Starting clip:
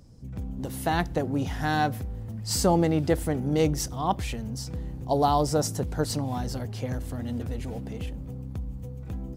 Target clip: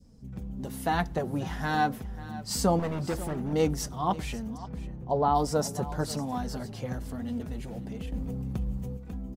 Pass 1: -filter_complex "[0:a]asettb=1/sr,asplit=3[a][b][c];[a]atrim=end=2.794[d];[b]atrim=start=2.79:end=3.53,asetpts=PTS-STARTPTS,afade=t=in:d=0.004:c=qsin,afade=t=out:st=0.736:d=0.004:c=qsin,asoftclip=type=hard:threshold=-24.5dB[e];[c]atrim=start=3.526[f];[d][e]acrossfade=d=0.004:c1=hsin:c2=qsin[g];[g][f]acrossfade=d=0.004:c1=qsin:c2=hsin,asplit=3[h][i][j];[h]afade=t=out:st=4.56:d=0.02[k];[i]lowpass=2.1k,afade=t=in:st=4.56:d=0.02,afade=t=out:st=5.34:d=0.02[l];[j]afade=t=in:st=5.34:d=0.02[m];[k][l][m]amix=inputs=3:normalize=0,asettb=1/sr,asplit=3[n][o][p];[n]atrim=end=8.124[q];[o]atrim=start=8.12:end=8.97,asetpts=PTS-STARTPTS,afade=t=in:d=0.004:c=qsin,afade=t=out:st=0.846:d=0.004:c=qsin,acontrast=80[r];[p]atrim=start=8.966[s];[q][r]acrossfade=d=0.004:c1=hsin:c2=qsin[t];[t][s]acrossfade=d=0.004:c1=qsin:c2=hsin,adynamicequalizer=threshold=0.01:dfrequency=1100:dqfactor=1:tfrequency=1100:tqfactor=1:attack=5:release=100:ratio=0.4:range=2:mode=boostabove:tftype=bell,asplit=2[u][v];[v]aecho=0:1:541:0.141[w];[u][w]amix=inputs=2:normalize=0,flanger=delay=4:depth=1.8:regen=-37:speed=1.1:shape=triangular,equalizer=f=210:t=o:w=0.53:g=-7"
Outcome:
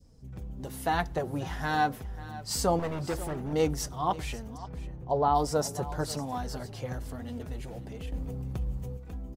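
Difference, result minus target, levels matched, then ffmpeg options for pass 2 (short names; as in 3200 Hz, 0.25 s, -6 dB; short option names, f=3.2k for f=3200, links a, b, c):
250 Hz band -3.0 dB
-filter_complex "[0:a]asettb=1/sr,asplit=3[a][b][c];[a]atrim=end=2.794[d];[b]atrim=start=2.79:end=3.53,asetpts=PTS-STARTPTS,afade=t=in:d=0.004:c=qsin,afade=t=out:st=0.736:d=0.004:c=qsin,asoftclip=type=hard:threshold=-24.5dB[e];[c]atrim=start=3.526[f];[d][e]acrossfade=d=0.004:c1=hsin:c2=qsin[g];[g][f]acrossfade=d=0.004:c1=qsin:c2=hsin,asplit=3[h][i][j];[h]afade=t=out:st=4.56:d=0.02[k];[i]lowpass=2.1k,afade=t=in:st=4.56:d=0.02,afade=t=out:st=5.34:d=0.02[l];[j]afade=t=in:st=5.34:d=0.02[m];[k][l][m]amix=inputs=3:normalize=0,asettb=1/sr,asplit=3[n][o][p];[n]atrim=end=8.124[q];[o]atrim=start=8.12:end=8.97,asetpts=PTS-STARTPTS,afade=t=in:d=0.004:c=qsin,afade=t=out:st=0.846:d=0.004:c=qsin,acontrast=80[r];[p]atrim=start=8.966[s];[q][r]acrossfade=d=0.004:c1=hsin:c2=qsin[t];[t][s]acrossfade=d=0.004:c1=qsin:c2=hsin,adynamicequalizer=threshold=0.01:dfrequency=1100:dqfactor=1:tfrequency=1100:tqfactor=1:attack=5:release=100:ratio=0.4:range=2:mode=boostabove:tftype=bell,asplit=2[u][v];[v]aecho=0:1:541:0.141[w];[u][w]amix=inputs=2:normalize=0,flanger=delay=4:depth=1.8:regen=-37:speed=1.1:shape=triangular,equalizer=f=210:t=o:w=0.53:g=3"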